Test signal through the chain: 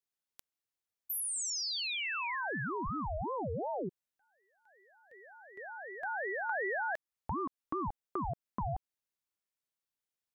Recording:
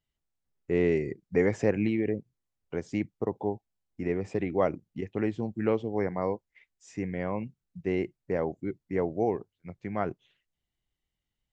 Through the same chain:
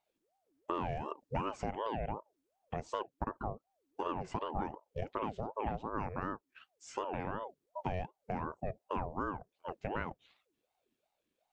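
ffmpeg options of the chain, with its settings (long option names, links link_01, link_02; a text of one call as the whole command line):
ffmpeg -i in.wav -af "acompressor=threshold=-35dB:ratio=6,aeval=exprs='val(0)*sin(2*PI*530*n/s+530*0.5/2.7*sin(2*PI*2.7*n/s))':channel_layout=same,volume=4dB" out.wav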